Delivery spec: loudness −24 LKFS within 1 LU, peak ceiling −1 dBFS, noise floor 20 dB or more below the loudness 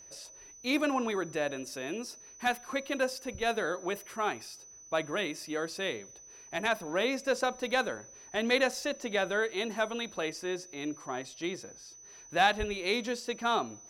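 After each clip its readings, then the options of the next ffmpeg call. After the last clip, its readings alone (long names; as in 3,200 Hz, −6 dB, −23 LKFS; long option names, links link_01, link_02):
interfering tone 6,000 Hz; level of the tone −50 dBFS; integrated loudness −32.5 LKFS; sample peak −12.0 dBFS; target loudness −24.0 LKFS
→ -af "bandreject=frequency=6000:width=30"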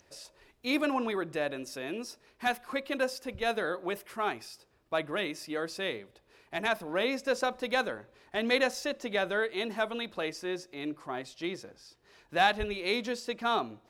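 interfering tone none found; integrated loudness −32.5 LKFS; sample peak −12.0 dBFS; target loudness −24.0 LKFS
→ -af "volume=8.5dB"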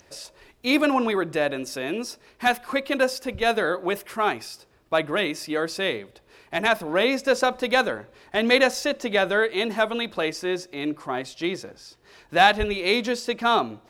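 integrated loudness −24.0 LKFS; sample peak −3.5 dBFS; background noise floor −58 dBFS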